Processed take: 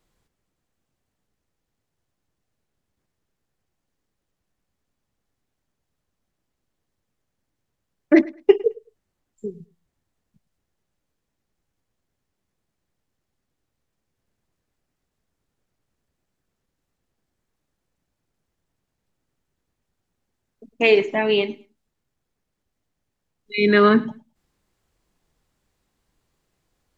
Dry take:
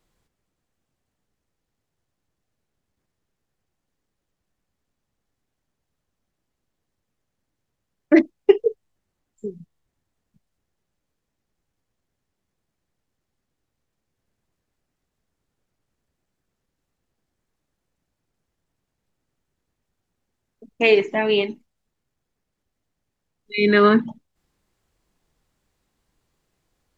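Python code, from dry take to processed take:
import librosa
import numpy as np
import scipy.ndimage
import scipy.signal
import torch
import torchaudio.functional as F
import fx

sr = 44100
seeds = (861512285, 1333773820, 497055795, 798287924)

y = fx.echo_feedback(x, sr, ms=106, feedback_pct=19, wet_db=-21.5)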